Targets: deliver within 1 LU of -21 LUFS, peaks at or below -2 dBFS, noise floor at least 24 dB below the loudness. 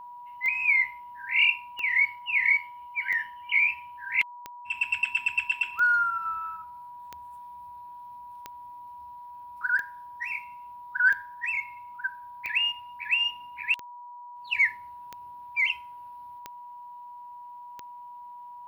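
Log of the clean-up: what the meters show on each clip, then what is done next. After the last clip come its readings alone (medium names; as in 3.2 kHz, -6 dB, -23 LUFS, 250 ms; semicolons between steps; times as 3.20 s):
clicks found 14; steady tone 970 Hz; tone level -41 dBFS; loudness -26.0 LUFS; peak level -12.5 dBFS; loudness target -21.0 LUFS
-> de-click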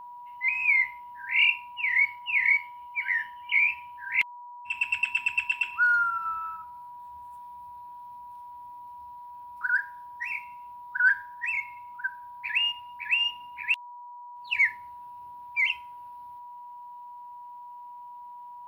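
clicks found 0; steady tone 970 Hz; tone level -41 dBFS
-> band-stop 970 Hz, Q 30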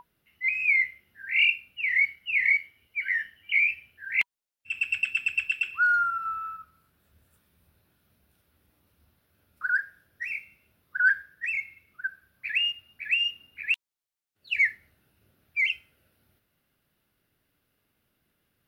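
steady tone not found; loudness -26.0 LUFS; peak level -12.5 dBFS; loudness target -21.0 LUFS
-> trim +5 dB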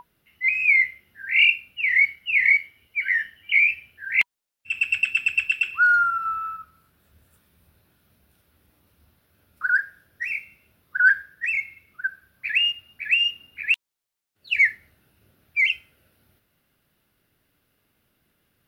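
loudness -21.0 LUFS; peak level -7.5 dBFS; noise floor -83 dBFS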